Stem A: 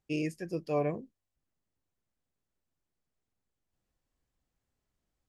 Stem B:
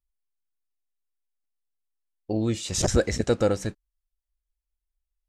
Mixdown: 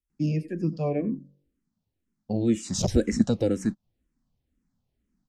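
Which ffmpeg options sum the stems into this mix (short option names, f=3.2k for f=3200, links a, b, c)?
-filter_complex "[0:a]lowpass=5.9k,bass=f=250:g=8,treble=f=4k:g=3,bandreject=f=47.68:t=h:w=4,bandreject=f=95.36:t=h:w=4,bandreject=f=143.04:t=h:w=4,bandreject=f=190.72:t=h:w=4,bandreject=f=238.4:t=h:w=4,bandreject=f=286.08:t=h:w=4,bandreject=f=333.76:t=h:w=4,bandreject=f=381.44:t=h:w=4,bandreject=f=429.12:t=h:w=4,bandreject=f=476.8:t=h:w=4,bandreject=f=524.48:t=h:w=4,bandreject=f=572.16:t=h:w=4,adelay=100,volume=1.5dB,asplit=2[a][b];[b]volume=-19dB[c];[1:a]volume=-2dB[d];[c]aecho=0:1:91:1[e];[a][d][e]amix=inputs=3:normalize=0,equalizer=f=230:w=1.4:g=13.5,acrossover=split=370|3000[f][g][h];[g]acompressor=threshold=-25dB:ratio=6[i];[f][i][h]amix=inputs=3:normalize=0,asplit=2[j][k];[k]afreqshift=-2[l];[j][l]amix=inputs=2:normalize=1"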